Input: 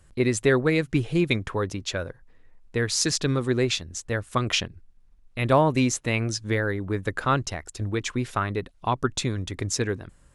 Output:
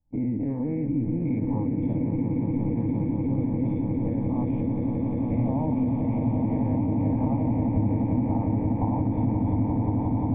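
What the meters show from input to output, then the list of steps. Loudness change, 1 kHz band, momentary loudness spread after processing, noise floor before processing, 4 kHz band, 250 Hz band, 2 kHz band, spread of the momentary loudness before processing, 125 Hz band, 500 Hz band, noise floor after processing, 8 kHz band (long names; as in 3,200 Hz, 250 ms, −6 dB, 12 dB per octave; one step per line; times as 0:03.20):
−0.5 dB, −6.0 dB, 2 LU, −56 dBFS, below −40 dB, +5.0 dB, below −20 dB, 9 LU, +2.5 dB, −7.5 dB, −28 dBFS, below −40 dB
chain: every bin's largest magnitude spread in time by 120 ms
camcorder AGC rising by 30 dB per second
noise gate −26 dBFS, range −15 dB
flanger 1.3 Hz, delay 9.6 ms, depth 5 ms, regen −87%
in parallel at −2.5 dB: output level in coarse steps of 11 dB
on the sum: formant resonators in series u
on a send: echo that builds up and dies away 176 ms, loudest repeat 8, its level −7 dB
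on the sum: dynamic equaliser 980 Hz, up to −6 dB, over −40 dBFS, Q 1
brickwall limiter −17 dBFS, peak gain reduction 8 dB
phaser with its sweep stopped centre 1,400 Hz, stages 6
level +7 dB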